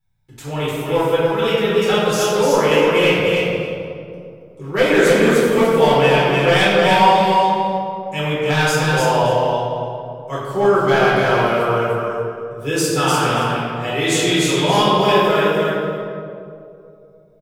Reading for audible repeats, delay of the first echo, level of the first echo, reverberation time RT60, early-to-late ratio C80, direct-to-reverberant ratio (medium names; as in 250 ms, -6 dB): 1, 299 ms, -3.5 dB, 2.6 s, -2.5 dB, -10.5 dB